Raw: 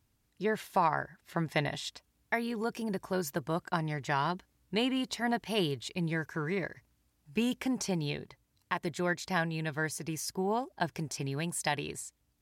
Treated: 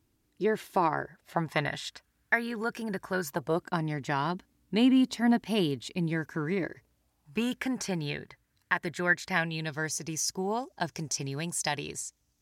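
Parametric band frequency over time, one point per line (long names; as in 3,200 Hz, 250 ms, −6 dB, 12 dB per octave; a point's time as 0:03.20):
parametric band +10.5 dB 0.63 octaves
0:00.96 330 Hz
0:01.70 1,600 Hz
0:03.21 1,600 Hz
0:03.69 250 Hz
0:06.53 250 Hz
0:07.56 1,700 Hz
0:09.27 1,700 Hz
0:09.78 6,100 Hz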